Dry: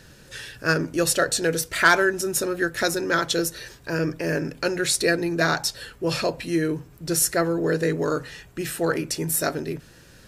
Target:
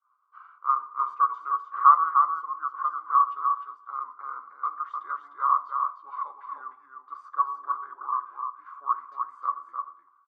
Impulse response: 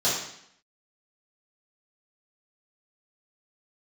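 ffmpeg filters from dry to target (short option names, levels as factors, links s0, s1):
-filter_complex "[0:a]agate=range=0.0224:threshold=0.01:ratio=3:detection=peak,asetrate=37084,aresample=44100,atempo=1.18921,asuperpass=centerf=1100:order=4:qfactor=6.3,aecho=1:1:303:0.562,asplit=2[s0][s1];[1:a]atrim=start_sample=2205[s2];[s1][s2]afir=irnorm=-1:irlink=0,volume=0.0501[s3];[s0][s3]amix=inputs=2:normalize=0,volume=2.37"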